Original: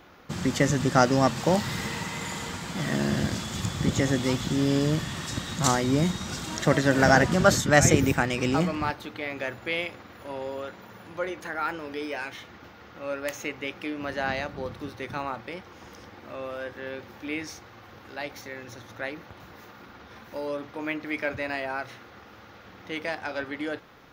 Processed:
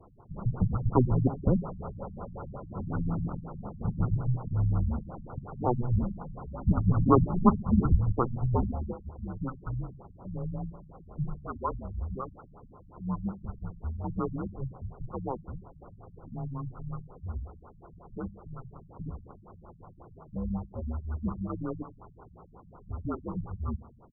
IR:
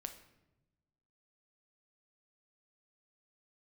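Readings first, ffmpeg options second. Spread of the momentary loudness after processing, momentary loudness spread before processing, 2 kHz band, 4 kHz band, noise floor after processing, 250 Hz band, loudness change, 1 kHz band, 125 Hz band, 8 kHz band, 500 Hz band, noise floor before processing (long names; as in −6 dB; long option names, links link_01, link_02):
17 LU, 20 LU, −28.0 dB, below −40 dB, −54 dBFS, −3.5 dB, −5.0 dB, −6.5 dB, +0.5 dB, below −40 dB, −8.5 dB, −49 dBFS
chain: -filter_complex "[0:a]highpass=frequency=230:width_type=q:width=0.5412,highpass=frequency=230:width_type=q:width=1.307,lowpass=frequency=3100:width_type=q:width=0.5176,lowpass=frequency=3100:width_type=q:width=0.7071,lowpass=frequency=3100:width_type=q:width=1.932,afreqshift=-380,asplit=2[link_01][link_02];[link_02]adelay=66,lowpass=frequency=2000:poles=1,volume=-16.5dB,asplit=2[link_03][link_04];[link_04]adelay=66,lowpass=frequency=2000:poles=1,volume=0.49,asplit=2[link_05][link_06];[link_06]adelay=66,lowpass=frequency=2000:poles=1,volume=0.49,asplit=2[link_07][link_08];[link_08]adelay=66,lowpass=frequency=2000:poles=1,volume=0.49[link_09];[link_01][link_03][link_05][link_07][link_09]amix=inputs=5:normalize=0,afftfilt=real='re*lt(b*sr/1024,200*pow(1500/200,0.5+0.5*sin(2*PI*5.5*pts/sr)))':imag='im*lt(b*sr/1024,200*pow(1500/200,0.5+0.5*sin(2*PI*5.5*pts/sr)))':win_size=1024:overlap=0.75"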